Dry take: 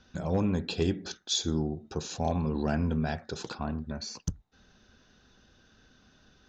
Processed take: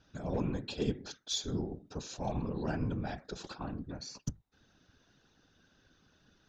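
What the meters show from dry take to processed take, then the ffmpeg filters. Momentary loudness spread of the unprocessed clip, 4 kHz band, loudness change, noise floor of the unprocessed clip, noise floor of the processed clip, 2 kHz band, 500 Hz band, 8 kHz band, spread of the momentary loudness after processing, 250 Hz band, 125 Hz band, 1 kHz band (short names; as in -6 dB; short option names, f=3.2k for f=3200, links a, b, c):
9 LU, -6.0 dB, -6.0 dB, -63 dBFS, -70 dBFS, -6.5 dB, -6.0 dB, n/a, 9 LU, -6.5 dB, -6.0 dB, -6.0 dB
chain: -af "aeval=exprs='0.168*(cos(1*acos(clip(val(0)/0.168,-1,1)))-cos(1*PI/2))+0.00299*(cos(4*acos(clip(val(0)/0.168,-1,1)))-cos(4*PI/2))':c=same,afftfilt=real='hypot(re,im)*cos(2*PI*random(0))':imag='hypot(re,im)*sin(2*PI*random(1))':win_size=512:overlap=0.75"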